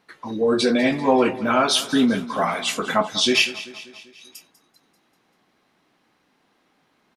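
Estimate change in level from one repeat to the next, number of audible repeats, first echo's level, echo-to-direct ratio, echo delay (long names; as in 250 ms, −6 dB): −5.0 dB, 4, −16.5 dB, −15.0 dB, 195 ms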